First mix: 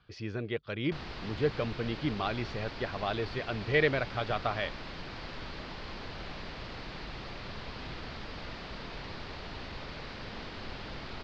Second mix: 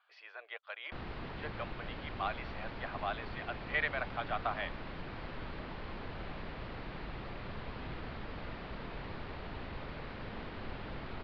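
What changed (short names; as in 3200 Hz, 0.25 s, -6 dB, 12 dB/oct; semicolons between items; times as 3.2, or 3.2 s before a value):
speech: add steep high-pass 660 Hz 36 dB/oct; master: add air absorption 330 m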